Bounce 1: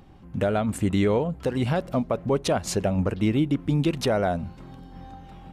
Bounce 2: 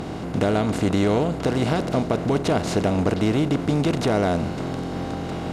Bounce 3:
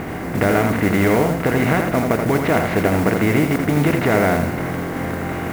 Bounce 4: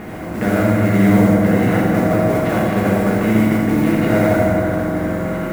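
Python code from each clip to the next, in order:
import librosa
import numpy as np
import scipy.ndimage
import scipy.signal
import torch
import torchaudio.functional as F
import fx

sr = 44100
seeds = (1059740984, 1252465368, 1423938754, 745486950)

y1 = fx.bin_compress(x, sr, power=0.4)
y1 = fx.high_shelf(y1, sr, hz=6700.0, db=-8.5)
y1 = fx.notch(y1, sr, hz=550.0, q=12.0)
y1 = y1 * 10.0 ** (-2.0 / 20.0)
y2 = fx.lowpass_res(y1, sr, hz=2000.0, q=3.1)
y2 = fx.mod_noise(y2, sr, seeds[0], snr_db=20)
y2 = y2 + 10.0 ** (-5.5 / 20.0) * np.pad(y2, (int(82 * sr / 1000.0), 0))[:len(y2)]
y2 = y2 * 10.0 ** (2.5 / 20.0)
y3 = fx.rev_fdn(y2, sr, rt60_s=3.5, lf_ratio=1.0, hf_ratio=0.35, size_ms=28.0, drr_db=-5.0)
y3 = y3 * 10.0 ** (-6.5 / 20.0)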